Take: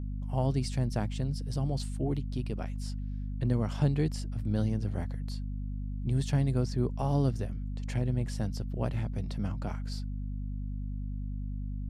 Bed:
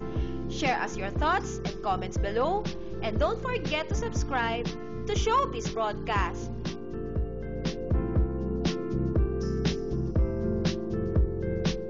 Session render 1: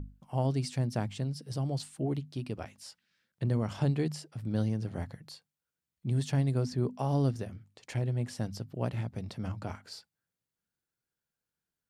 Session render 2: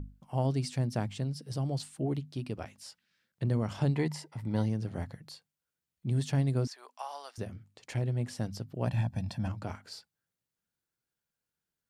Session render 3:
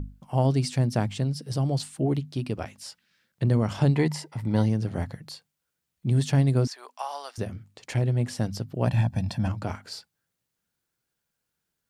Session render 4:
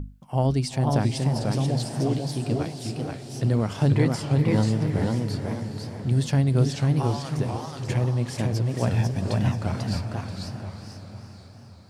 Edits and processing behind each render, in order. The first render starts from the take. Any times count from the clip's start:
hum notches 50/100/150/200/250 Hz
3.95–4.66 s: small resonant body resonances 930/2000 Hz, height 15 dB, ringing for 25 ms; 6.67–7.38 s: high-pass 810 Hz 24 dB/octave; 8.87–9.48 s: comb 1.2 ms, depth 95%
trim +7 dB
echo that smears into a reverb 466 ms, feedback 55%, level -9 dB; modulated delay 490 ms, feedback 31%, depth 209 cents, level -3 dB

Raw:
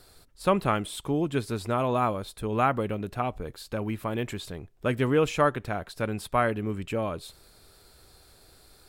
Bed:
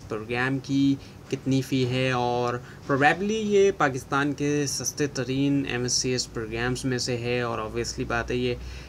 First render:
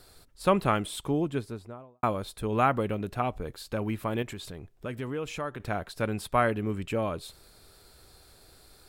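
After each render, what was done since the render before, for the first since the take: 0.98–2.03 s: studio fade out; 4.22–5.60 s: compression 2:1, threshold -38 dBFS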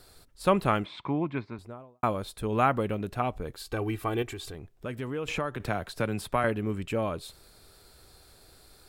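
0.84–1.59 s: cabinet simulation 110–3900 Hz, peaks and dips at 450 Hz -8 dB, 1 kHz +9 dB, 2.2 kHz +10 dB, 3.1 kHz -8 dB; 3.59–4.55 s: comb 2.6 ms; 5.28–6.44 s: three bands compressed up and down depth 70%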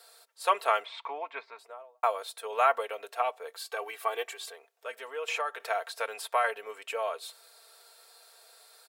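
steep high-pass 510 Hz 36 dB/octave; comb 4.4 ms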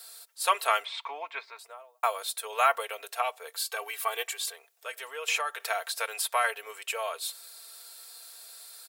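tilt EQ +3.5 dB/octave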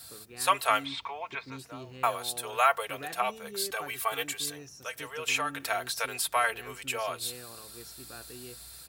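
add bed -21 dB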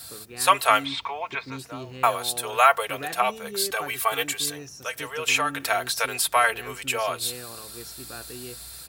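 trim +6.5 dB

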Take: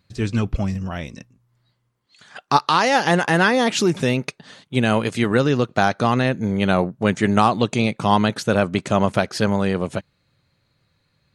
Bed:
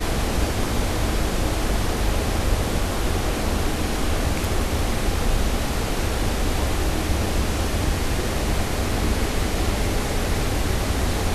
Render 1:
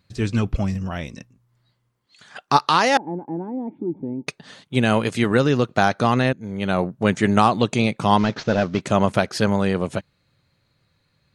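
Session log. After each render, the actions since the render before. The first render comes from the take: 2.97–4.27 s: cascade formant filter u; 6.33–6.97 s: fade in, from -16.5 dB; 8.18–8.81 s: CVSD coder 32 kbps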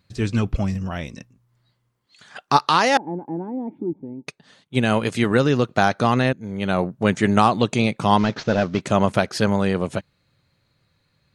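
3.93–5.02 s: upward expansion, over -33 dBFS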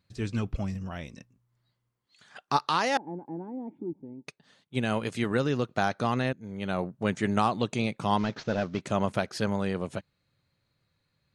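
trim -9 dB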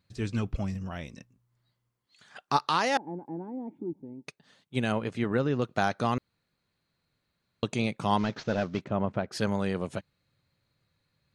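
4.92–5.62 s: low-pass 1.8 kHz 6 dB/octave; 6.18–7.63 s: room tone; 8.84–9.32 s: tape spacing loss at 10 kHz 37 dB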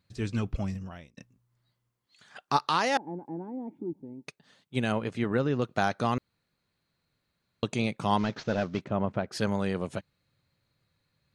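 0.70–1.17 s: fade out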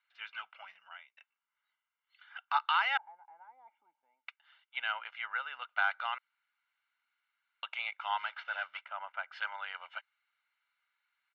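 Chebyshev band-pass 1–3.1 kHz, order 3; comb 1.4 ms, depth 72%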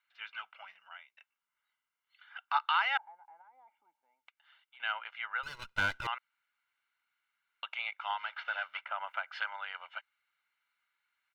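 3.41–4.80 s: compression, threshold -56 dBFS; 5.43–6.07 s: comb filter that takes the minimum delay 2 ms; 8.10–9.48 s: three bands compressed up and down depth 100%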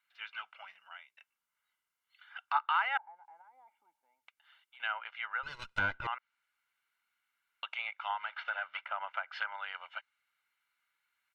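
low-pass that closes with the level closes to 2.1 kHz, closed at -32 dBFS; treble shelf 8.8 kHz +6 dB

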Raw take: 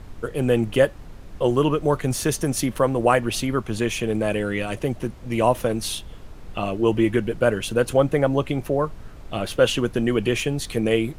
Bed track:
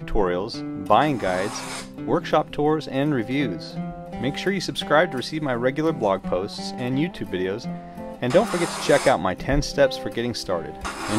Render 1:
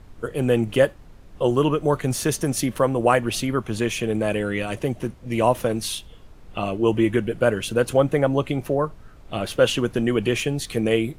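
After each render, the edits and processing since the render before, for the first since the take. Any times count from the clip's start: noise print and reduce 6 dB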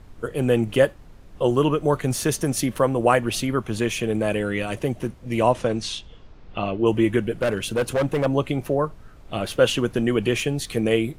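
5.43–6.85 s: low-pass 9.2 kHz -> 4.3 kHz 24 dB/octave; 7.41–8.26 s: hard clipper -17.5 dBFS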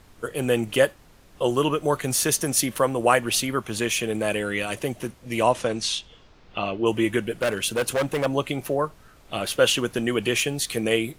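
tilt EQ +2 dB/octave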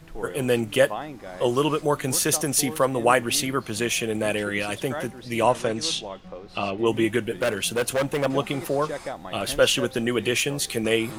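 add bed track -15 dB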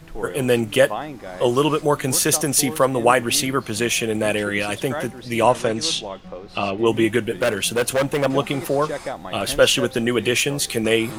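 trim +4 dB; peak limiter -2 dBFS, peak gain reduction 2 dB

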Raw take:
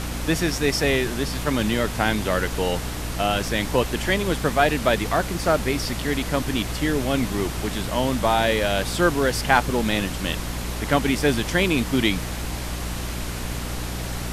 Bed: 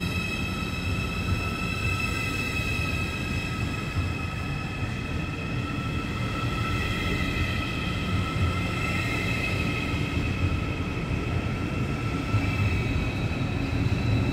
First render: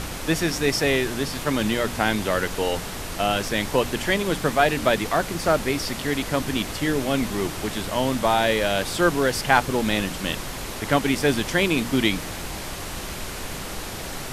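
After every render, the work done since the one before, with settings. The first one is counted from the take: de-hum 60 Hz, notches 5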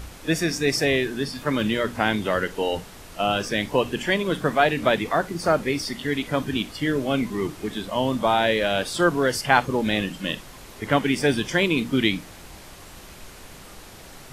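noise print and reduce 11 dB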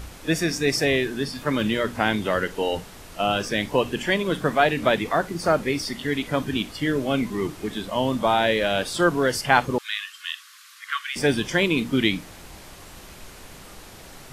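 9.78–11.16 s: rippled Chebyshev high-pass 1.1 kHz, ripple 3 dB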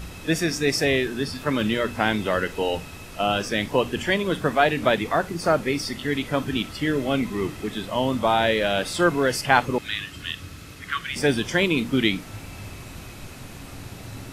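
add bed -14.5 dB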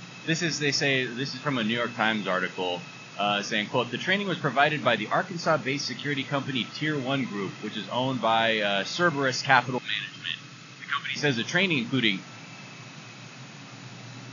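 peaking EQ 390 Hz -7 dB 1.7 oct; FFT band-pass 110–7000 Hz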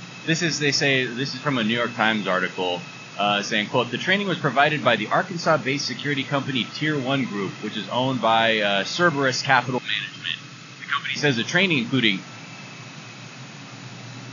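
trim +4.5 dB; peak limiter -3 dBFS, peak gain reduction 3 dB

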